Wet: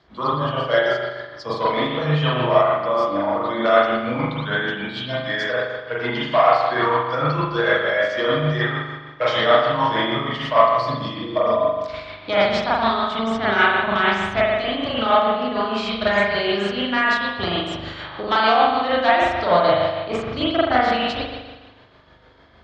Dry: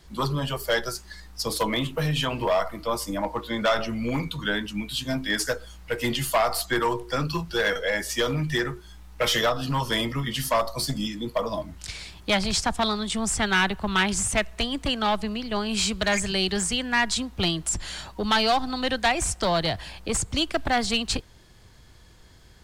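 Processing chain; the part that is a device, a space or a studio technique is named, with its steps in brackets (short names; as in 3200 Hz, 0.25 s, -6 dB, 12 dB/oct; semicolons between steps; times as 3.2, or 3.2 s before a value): 5.76–6.61 LPF 4400 Hz -> 8100 Hz 24 dB/oct; combo amplifier with spring reverb and tremolo (spring tank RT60 1.3 s, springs 40 ms, chirp 80 ms, DRR -8 dB; tremolo 6.6 Hz, depth 37%; speaker cabinet 98–4400 Hz, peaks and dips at 190 Hz -8 dB, 620 Hz +6 dB, 1200 Hz +6 dB, 2700 Hz -4 dB); gain -1.5 dB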